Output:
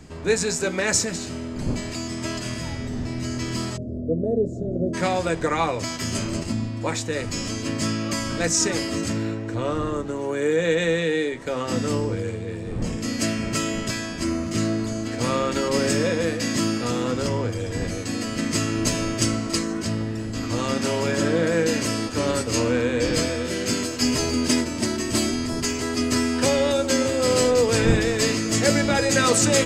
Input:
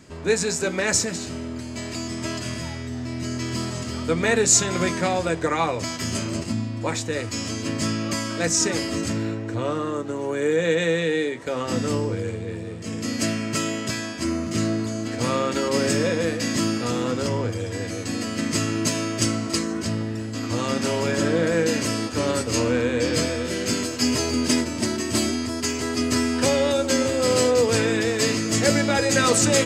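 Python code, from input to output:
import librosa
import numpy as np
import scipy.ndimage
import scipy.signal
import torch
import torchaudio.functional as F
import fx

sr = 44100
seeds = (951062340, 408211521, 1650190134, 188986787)

y = fx.dmg_wind(x, sr, seeds[0], corner_hz=210.0, level_db=-37.0)
y = fx.ellip_lowpass(y, sr, hz=630.0, order=4, stop_db=40, at=(3.76, 4.93), fade=0.02)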